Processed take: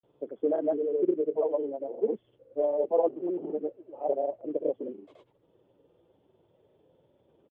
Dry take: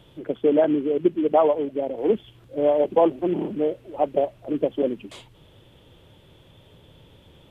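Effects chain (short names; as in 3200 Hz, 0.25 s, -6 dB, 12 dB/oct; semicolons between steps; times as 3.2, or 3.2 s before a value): bin magnitudes rounded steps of 15 dB; band-pass 470 Hz, Q 1.4; grains, pitch spread up and down by 0 st; gain -4.5 dB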